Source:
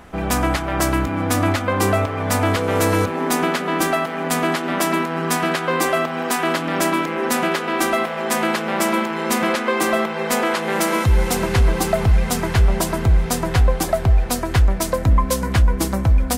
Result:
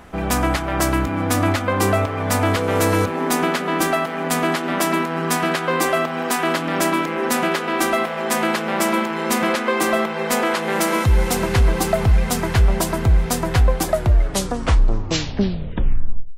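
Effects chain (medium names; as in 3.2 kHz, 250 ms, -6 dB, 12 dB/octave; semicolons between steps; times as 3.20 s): tape stop on the ending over 2.51 s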